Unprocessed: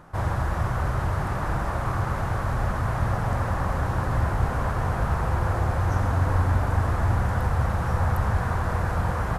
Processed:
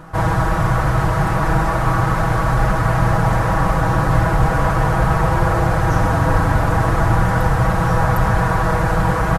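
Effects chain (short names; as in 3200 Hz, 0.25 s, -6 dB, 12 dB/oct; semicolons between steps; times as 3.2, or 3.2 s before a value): comb 6.2 ms, depth 74%; gain +8.5 dB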